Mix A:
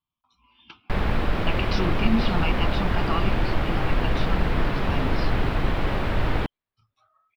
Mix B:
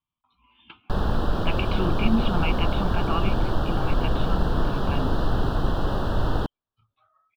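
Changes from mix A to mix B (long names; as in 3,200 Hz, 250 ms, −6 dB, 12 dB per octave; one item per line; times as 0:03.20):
speech: add Butterworth low-pass 3,600 Hz
background: add Butterworth band-reject 2,200 Hz, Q 1.4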